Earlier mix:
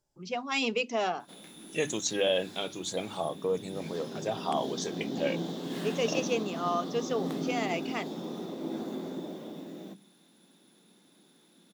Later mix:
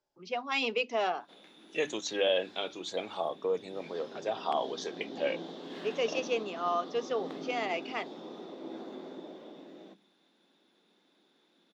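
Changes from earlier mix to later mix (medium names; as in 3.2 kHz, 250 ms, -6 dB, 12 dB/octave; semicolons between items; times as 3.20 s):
background -3.5 dB; master: add three-band isolator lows -15 dB, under 280 Hz, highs -23 dB, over 5.3 kHz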